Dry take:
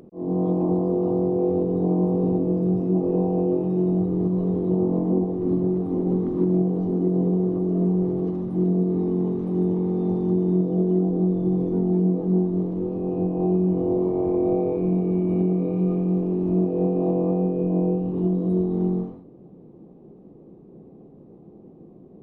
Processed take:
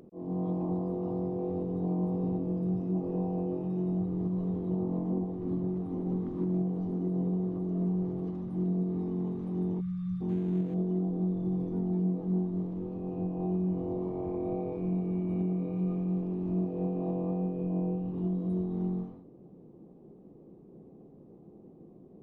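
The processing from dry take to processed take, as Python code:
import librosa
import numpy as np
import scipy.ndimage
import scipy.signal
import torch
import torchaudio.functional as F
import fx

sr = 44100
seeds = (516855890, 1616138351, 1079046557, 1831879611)

y = fx.median_filter(x, sr, points=25, at=(10.29, 10.74))
y = fx.dynamic_eq(y, sr, hz=410.0, q=0.94, threshold_db=-36.0, ratio=4.0, max_db=-7)
y = fx.spec_erase(y, sr, start_s=9.81, length_s=0.4, low_hz=210.0, high_hz=1100.0)
y = F.gain(torch.from_numpy(y), -6.0).numpy()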